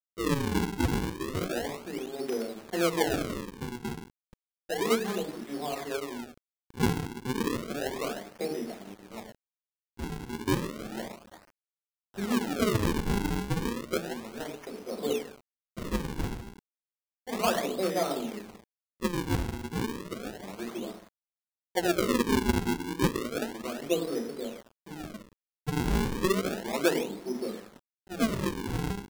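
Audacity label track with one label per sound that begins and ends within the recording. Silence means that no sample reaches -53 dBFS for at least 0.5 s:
9.970000	11.500000	sound
12.140000	16.590000	sound
17.270000	21.090000	sound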